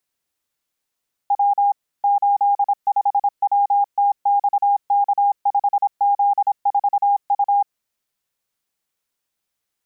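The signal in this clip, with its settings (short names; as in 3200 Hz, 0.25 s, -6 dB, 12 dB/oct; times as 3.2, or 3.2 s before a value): Morse "W 85WTXK5Z4U" 26 wpm 809 Hz -13 dBFS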